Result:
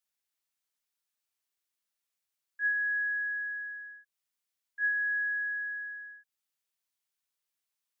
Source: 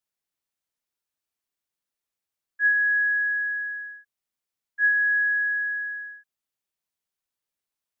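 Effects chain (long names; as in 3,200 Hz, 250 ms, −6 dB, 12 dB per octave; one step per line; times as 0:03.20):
one half of a high-frequency compander encoder only
level −8.5 dB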